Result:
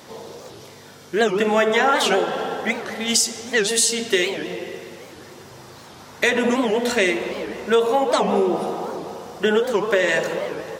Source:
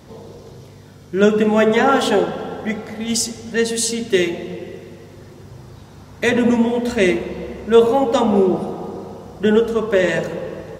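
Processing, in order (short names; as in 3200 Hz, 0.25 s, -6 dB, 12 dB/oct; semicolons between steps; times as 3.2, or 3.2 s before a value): HPF 760 Hz 6 dB/oct; compressor 3:1, threshold -23 dBFS, peak gain reduction 9 dB; record warp 78 rpm, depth 250 cents; gain +7 dB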